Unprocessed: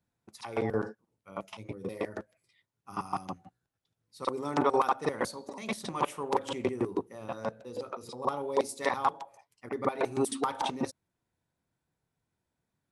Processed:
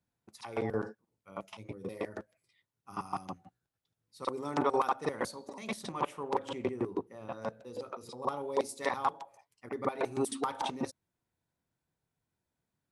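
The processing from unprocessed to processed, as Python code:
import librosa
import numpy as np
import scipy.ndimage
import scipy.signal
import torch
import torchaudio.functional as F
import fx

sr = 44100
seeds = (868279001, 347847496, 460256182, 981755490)

y = fx.high_shelf(x, sr, hz=5200.0, db=-8.5, at=(5.92, 7.42))
y = F.gain(torch.from_numpy(y), -3.0).numpy()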